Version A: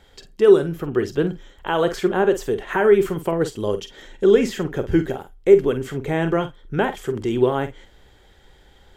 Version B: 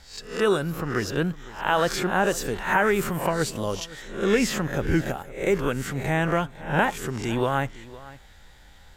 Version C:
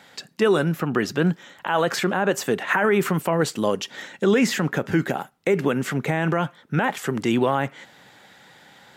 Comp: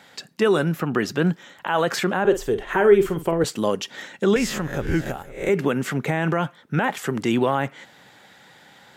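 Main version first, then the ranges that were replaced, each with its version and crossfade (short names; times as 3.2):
C
2.25–3.44 from A
4.36–5.49 from B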